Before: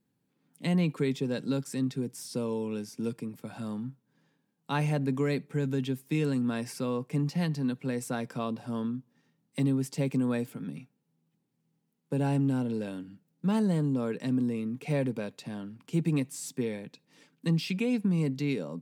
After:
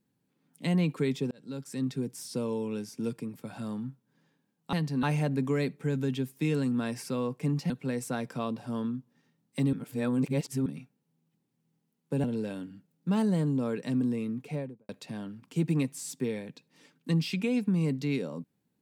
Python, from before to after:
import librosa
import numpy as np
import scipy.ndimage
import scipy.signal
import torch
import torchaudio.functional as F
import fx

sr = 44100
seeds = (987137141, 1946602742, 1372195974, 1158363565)

y = fx.studio_fade_out(x, sr, start_s=14.66, length_s=0.6)
y = fx.edit(y, sr, fx.fade_in_span(start_s=1.31, length_s=0.61),
    fx.move(start_s=7.4, length_s=0.3, to_s=4.73),
    fx.reverse_span(start_s=9.73, length_s=0.93),
    fx.cut(start_s=12.24, length_s=0.37), tone=tone)